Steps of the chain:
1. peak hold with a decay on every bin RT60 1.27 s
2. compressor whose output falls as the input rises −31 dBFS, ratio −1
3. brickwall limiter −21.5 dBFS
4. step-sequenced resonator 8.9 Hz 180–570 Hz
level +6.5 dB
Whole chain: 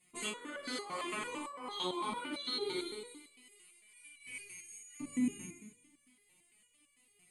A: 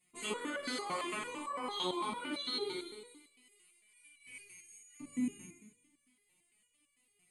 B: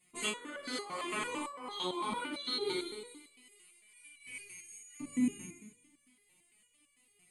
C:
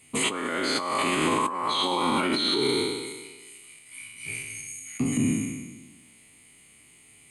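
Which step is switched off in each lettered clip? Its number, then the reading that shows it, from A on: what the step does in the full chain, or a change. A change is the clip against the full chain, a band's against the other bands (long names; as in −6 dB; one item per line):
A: 2, change in momentary loudness spread −4 LU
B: 3, change in momentary loudness spread −2 LU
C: 4, change in crest factor −5.0 dB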